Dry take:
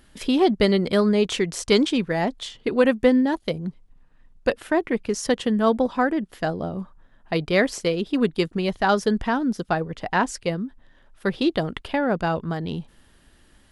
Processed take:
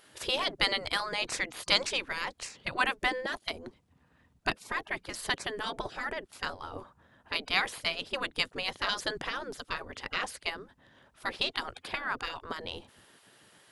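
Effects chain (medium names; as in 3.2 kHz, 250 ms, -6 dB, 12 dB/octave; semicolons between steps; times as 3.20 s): spectral gate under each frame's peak -15 dB weak; trim +1.5 dB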